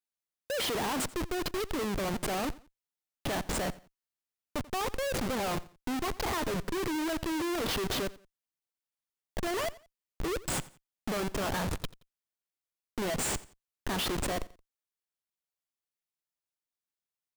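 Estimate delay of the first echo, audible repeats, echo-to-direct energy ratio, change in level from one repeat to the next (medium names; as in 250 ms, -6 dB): 87 ms, 2, -19.5 dB, -10.5 dB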